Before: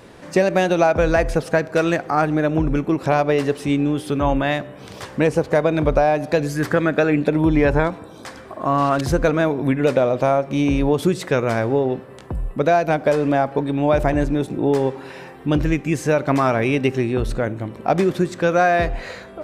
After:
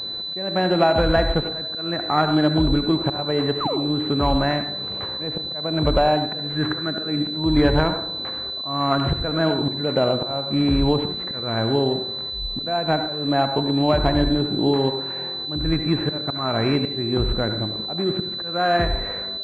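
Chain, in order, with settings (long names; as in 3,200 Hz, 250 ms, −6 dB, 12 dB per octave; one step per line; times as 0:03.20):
dynamic equaliser 500 Hz, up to −5 dB, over −30 dBFS, Q 2.2
volume swells 313 ms
sound drawn into the spectrogram fall, 0:03.60–0:03.80, 270–1,400 Hz −25 dBFS
on a send at −7.5 dB: convolution reverb RT60 0.55 s, pre-delay 63 ms
on the sum: switching amplifier with a slow clock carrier 4,000 Hz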